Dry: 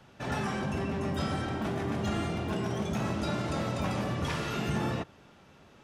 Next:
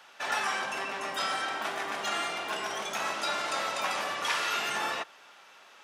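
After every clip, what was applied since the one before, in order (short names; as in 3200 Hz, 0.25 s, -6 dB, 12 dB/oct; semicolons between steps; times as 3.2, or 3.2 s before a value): HPF 950 Hz 12 dB/oct; gain +8 dB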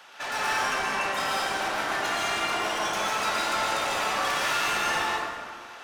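soft clip -33 dBFS, distortion -9 dB; plate-style reverb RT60 1.8 s, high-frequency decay 0.55×, pre-delay 0.105 s, DRR -4.5 dB; gain +4 dB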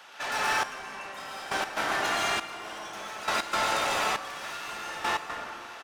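step gate "xxxxx.......x." 119 bpm -12 dB; echo 1.159 s -17 dB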